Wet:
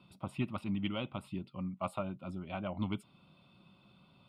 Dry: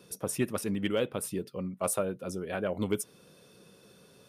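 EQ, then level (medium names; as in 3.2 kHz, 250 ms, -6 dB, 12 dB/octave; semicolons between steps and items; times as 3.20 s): distance through air 160 m; static phaser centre 1.7 kHz, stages 6; 0.0 dB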